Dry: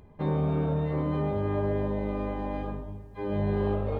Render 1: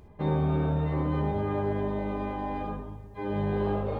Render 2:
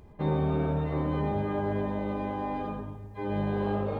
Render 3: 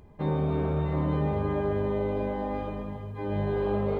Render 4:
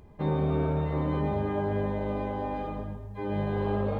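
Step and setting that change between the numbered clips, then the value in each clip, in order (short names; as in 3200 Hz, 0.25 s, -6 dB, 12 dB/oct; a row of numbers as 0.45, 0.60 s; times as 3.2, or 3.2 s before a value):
non-linear reverb, gate: 90, 140, 470, 240 ms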